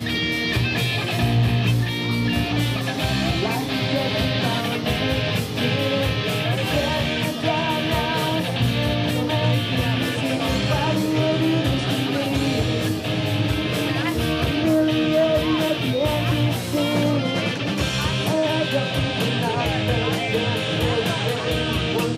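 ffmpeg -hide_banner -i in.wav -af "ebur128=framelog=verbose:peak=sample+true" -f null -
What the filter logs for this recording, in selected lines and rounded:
Integrated loudness:
  I:         -21.5 LUFS
  Threshold: -31.4 LUFS
Loudness range:
  LRA:         1.4 LU
  Threshold: -41.5 LUFS
  LRA low:   -21.9 LUFS
  LRA high:  -20.6 LUFS
Sample peak:
  Peak:       -9.4 dBFS
True peak:
  Peak:       -9.4 dBFS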